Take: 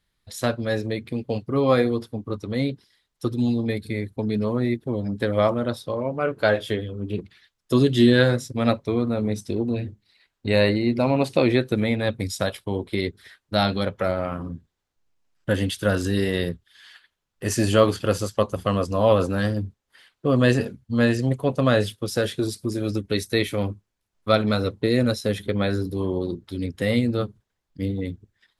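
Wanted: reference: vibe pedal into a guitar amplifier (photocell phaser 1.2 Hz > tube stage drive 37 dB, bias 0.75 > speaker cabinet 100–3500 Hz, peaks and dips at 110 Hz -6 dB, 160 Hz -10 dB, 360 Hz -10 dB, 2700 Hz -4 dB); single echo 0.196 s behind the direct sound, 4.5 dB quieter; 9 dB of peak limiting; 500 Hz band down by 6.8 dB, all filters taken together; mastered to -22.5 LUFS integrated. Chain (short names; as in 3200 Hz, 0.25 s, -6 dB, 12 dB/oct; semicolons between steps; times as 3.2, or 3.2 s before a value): bell 500 Hz -5.5 dB; limiter -14.5 dBFS; echo 0.196 s -4.5 dB; photocell phaser 1.2 Hz; tube stage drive 37 dB, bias 0.75; speaker cabinet 100–3500 Hz, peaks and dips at 110 Hz -6 dB, 160 Hz -10 dB, 360 Hz -10 dB, 2700 Hz -4 dB; gain +21 dB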